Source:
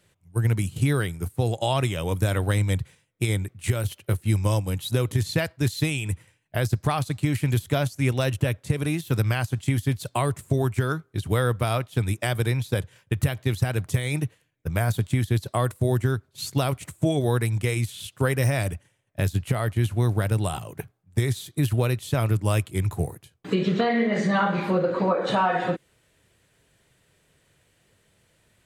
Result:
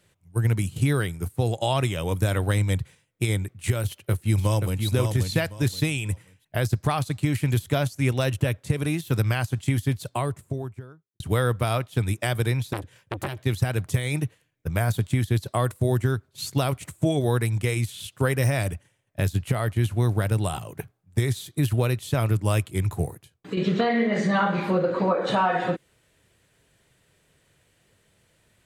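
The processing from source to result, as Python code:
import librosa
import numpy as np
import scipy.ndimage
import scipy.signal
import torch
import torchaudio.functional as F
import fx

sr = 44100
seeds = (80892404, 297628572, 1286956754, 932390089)

y = fx.echo_throw(x, sr, start_s=3.84, length_s=1.01, ms=530, feedback_pct=25, wet_db=-5.5)
y = fx.studio_fade_out(y, sr, start_s=9.78, length_s=1.42)
y = fx.transformer_sat(y, sr, knee_hz=1400.0, at=(12.73, 13.37))
y = fx.edit(y, sr, fx.fade_out_to(start_s=23.05, length_s=0.52, floor_db=-7.0), tone=tone)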